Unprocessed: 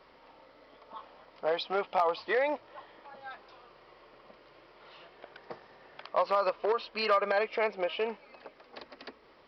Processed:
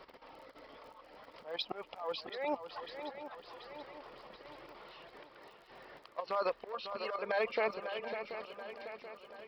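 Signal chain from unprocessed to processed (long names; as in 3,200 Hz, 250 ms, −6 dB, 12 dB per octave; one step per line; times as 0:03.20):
reverb reduction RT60 0.51 s
output level in coarse steps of 12 dB
volume swells 280 ms
surface crackle 29 per second −57 dBFS
on a send: feedback echo with a long and a short gap by turns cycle 732 ms, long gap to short 3 to 1, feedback 51%, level −9 dB
on the sum: level +5.5 dB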